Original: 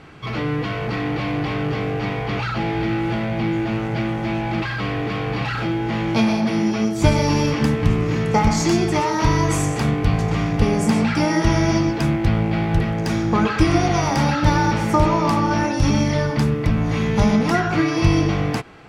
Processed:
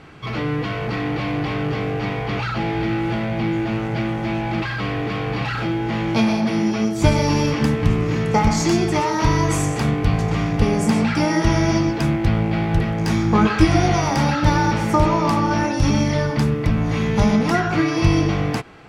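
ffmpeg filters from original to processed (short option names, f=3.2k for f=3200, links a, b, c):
-filter_complex "[0:a]asettb=1/sr,asplit=3[a][b][c];[a]atrim=end=12.994[d];[b]atrim=start=12.99:end=13.95,asetpts=PTS-STARTPTS,afade=t=in:d=0.004:c=qsin,afade=t=out:st=0.956:d=0.004:c=qsin,asplit=2[e][f];[f]adelay=19,volume=-5dB[g];[e][g]amix=inputs=2:normalize=0,atrim=end_sample=42336[h];[c]atrim=start=13.946[i];[d][h]acrossfade=d=0.004:c1=hsin:c2=qsin[j];[j][i]acrossfade=d=0.004:c1=qsin:c2=hsin"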